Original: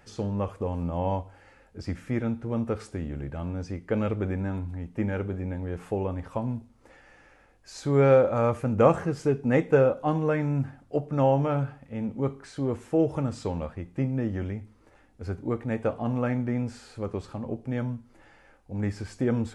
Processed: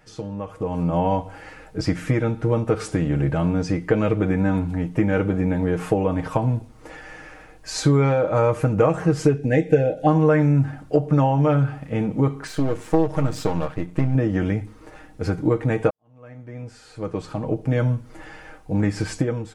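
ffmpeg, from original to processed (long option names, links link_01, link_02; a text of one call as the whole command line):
ffmpeg -i in.wav -filter_complex "[0:a]asettb=1/sr,asplit=3[link_01][link_02][link_03];[link_01]atrim=end=9.374[link_04];[link_02]atrim=start=9.37:end=10.07,asetpts=PTS-STARTPTS,afade=type=in:duration=0.004:curve=qsin,afade=type=out:start_time=0.696:duration=0.004:curve=qsin,asuperstop=centerf=1100:order=8:qfactor=1.5[link_05];[link_03]atrim=start=10.066[link_06];[link_04][link_05]acrossfade=duration=0.004:curve1=hsin:curve2=qsin[link_07];[link_07][link_06]acrossfade=duration=0.004:curve1=qsin:curve2=hsin,asettb=1/sr,asplit=3[link_08][link_09][link_10];[link_08]atrim=end=12.474[link_11];[link_09]atrim=start=12.47:end=14.15,asetpts=PTS-STARTPTS,afade=type=in:duration=0.004:curve=qsin,afade=type=out:start_time=1.676:duration=0.004:curve=qsin,aeval=exprs='if(lt(val(0),0),0.251*val(0),val(0))':channel_layout=same[link_12];[link_10]atrim=start=14.146[link_13];[link_11][link_12]acrossfade=duration=0.004:curve1=hsin:curve2=qsin[link_14];[link_14][link_13]acrossfade=duration=0.004:curve1=qsin:curve2=hsin,asplit=2[link_15][link_16];[link_15]atrim=end=15.9,asetpts=PTS-STARTPTS,afade=type=out:start_time=15.896:duration=0.004:curve=hsin[link_17];[link_16]atrim=start=15.9,asetpts=PTS-STARTPTS,afade=type=in:duration=2.03:curve=qua[link_18];[link_17][link_18]concat=n=2:v=0:a=1,acompressor=threshold=-30dB:ratio=5,aecho=1:1:6.4:0.62,dynaudnorm=framelen=490:gausssize=3:maxgain=13dB" out.wav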